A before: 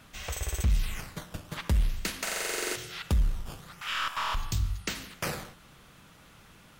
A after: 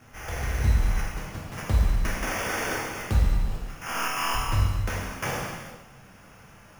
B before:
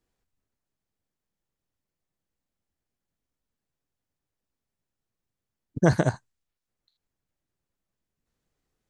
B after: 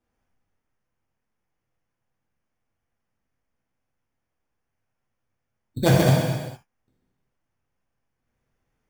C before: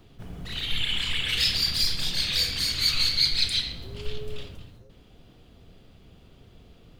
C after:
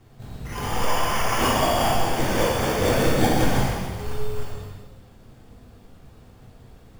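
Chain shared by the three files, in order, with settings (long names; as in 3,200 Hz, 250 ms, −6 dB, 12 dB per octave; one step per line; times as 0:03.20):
decimation without filtering 11×
reverb whose tail is shaped and stops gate 490 ms falling, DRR −5 dB
level −2 dB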